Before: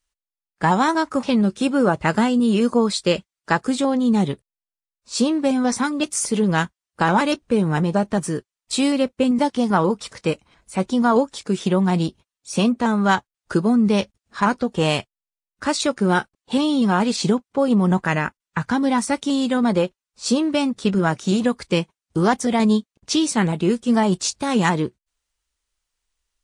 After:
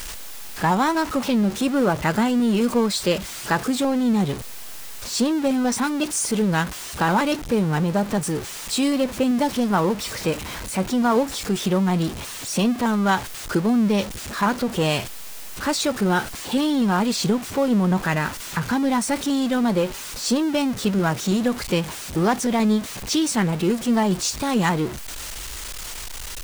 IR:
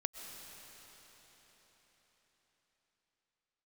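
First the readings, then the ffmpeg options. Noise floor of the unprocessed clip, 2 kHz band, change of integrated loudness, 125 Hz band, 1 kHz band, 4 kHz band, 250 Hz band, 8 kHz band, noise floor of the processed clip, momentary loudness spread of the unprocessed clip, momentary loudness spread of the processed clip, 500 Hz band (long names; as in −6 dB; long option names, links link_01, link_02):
below −85 dBFS, −1.5 dB, −1.5 dB, −1.0 dB, −2.0 dB, 0.0 dB, −1.5 dB, +2.0 dB, −34 dBFS, 8 LU, 9 LU, −2.0 dB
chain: -af "aeval=exprs='val(0)+0.5*0.0708*sgn(val(0))':channel_layout=same,volume=-3.5dB"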